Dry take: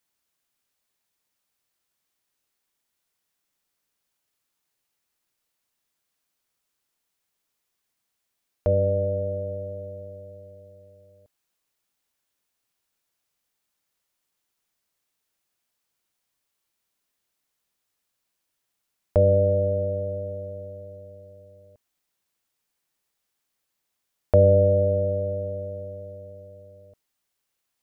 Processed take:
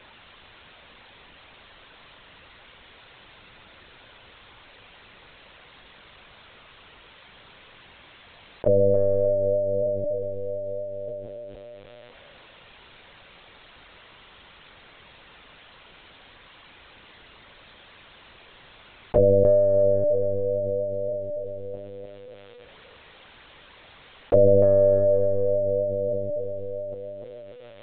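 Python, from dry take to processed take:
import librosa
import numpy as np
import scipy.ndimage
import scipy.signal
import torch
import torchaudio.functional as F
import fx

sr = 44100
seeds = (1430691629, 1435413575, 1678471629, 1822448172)

y = scipy.signal.sosfilt(scipy.signal.butter(4, 100.0, 'highpass', fs=sr, output='sos'), x)
y = fx.echo_tape(y, sr, ms=294, feedback_pct=40, wet_db=-8.5, lp_hz=1200.0, drive_db=11.0, wow_cents=14)
y = fx.lpc_vocoder(y, sr, seeds[0], excitation='pitch_kept', order=16)
y = fx.env_flatten(y, sr, amount_pct=50)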